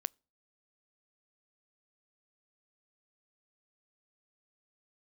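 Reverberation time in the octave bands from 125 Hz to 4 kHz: 0.45, 0.45, 0.40, 0.35, 0.35, 0.35 s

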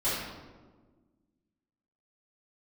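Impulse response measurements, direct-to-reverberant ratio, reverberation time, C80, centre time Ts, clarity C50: -14.0 dB, 1.4 s, 2.5 dB, 83 ms, -1.0 dB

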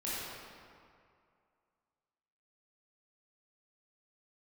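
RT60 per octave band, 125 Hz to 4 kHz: 2.3, 2.1, 2.3, 2.4, 1.9, 1.4 s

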